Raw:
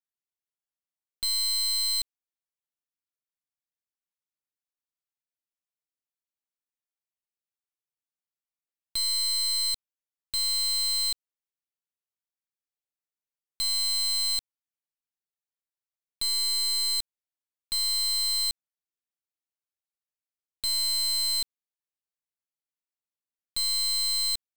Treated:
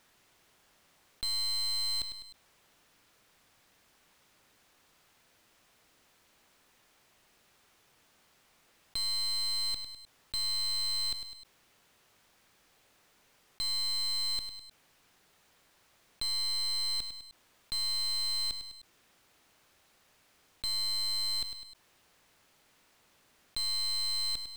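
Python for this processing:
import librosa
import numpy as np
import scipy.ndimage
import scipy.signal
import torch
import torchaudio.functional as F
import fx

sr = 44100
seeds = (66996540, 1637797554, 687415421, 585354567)

p1 = fx.lowpass(x, sr, hz=2900.0, slope=6)
p2 = p1 + fx.echo_feedback(p1, sr, ms=102, feedback_pct=29, wet_db=-16, dry=0)
p3 = fx.env_flatten(p2, sr, amount_pct=50)
y = p3 * librosa.db_to_amplitude(-1.0)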